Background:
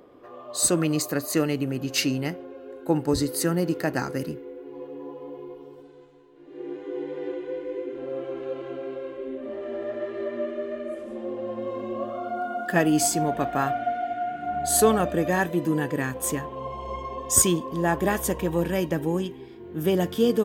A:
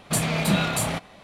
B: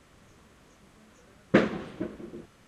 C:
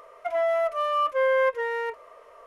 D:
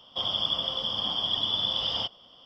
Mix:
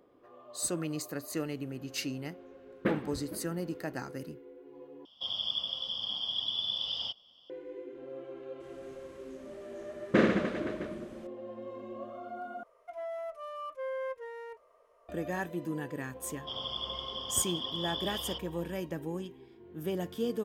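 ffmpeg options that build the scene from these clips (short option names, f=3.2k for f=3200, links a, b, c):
-filter_complex "[2:a]asplit=2[a][b];[4:a]asplit=2[c][d];[0:a]volume=-11.5dB[e];[a]lowpass=3.6k[f];[c]highshelf=f=2.5k:t=q:w=1.5:g=7[g];[b]aecho=1:1:40|88|145.6|214.7|297.7|397.2|516.6|660:0.794|0.631|0.501|0.398|0.316|0.251|0.2|0.158[h];[3:a]equalizer=f=2k:w=0.57:g=-6.5[i];[e]asplit=3[j][k][l];[j]atrim=end=5.054[m];[g]atrim=end=2.45,asetpts=PTS-STARTPTS,volume=-14dB[n];[k]atrim=start=7.496:end=12.634[o];[i]atrim=end=2.46,asetpts=PTS-STARTPTS,volume=-12.5dB[p];[l]atrim=start=15.086[q];[f]atrim=end=2.67,asetpts=PTS-STARTPTS,volume=-9.5dB,afade=t=in:d=0.004:c=hsin,afade=t=out:st=2.666:d=0.004:c=hsin,adelay=1310[r];[h]atrim=end=2.67,asetpts=PTS-STARTPTS,volume=-5.5dB,afade=t=in:d=0.004:c=hsin,afade=t=out:st=2.666:d=0.004:c=hsin,adelay=8600[s];[d]atrim=end=2.45,asetpts=PTS-STARTPTS,volume=-10dB,afade=t=in:d=0.004:c=hsin,afade=t=out:st=2.446:d=0.004:c=hsin,adelay=16310[t];[m][n]acrossfade=d=0.004:c1=hsin:c2=hsin[u];[u][o]acrossfade=d=0.004:c1=hsin:c2=hsin[v];[v][p]acrossfade=d=0.004:c1=hsin:c2=hsin[w];[w][q]acrossfade=d=0.004:c1=hsin:c2=hsin[x];[x][r][s][t]amix=inputs=4:normalize=0"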